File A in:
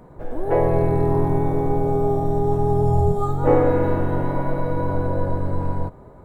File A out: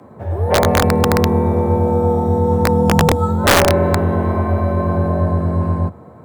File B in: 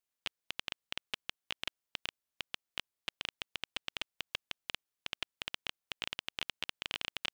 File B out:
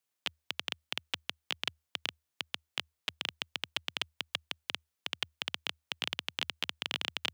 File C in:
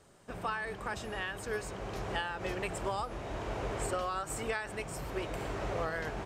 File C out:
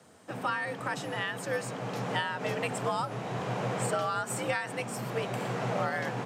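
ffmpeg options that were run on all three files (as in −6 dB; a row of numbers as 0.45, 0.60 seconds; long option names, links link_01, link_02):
-af "afreqshift=76,aeval=exprs='(mod(2.66*val(0)+1,2)-1)/2.66':channel_layout=same,volume=4dB"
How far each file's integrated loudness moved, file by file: +6.0, +4.0, +4.5 LU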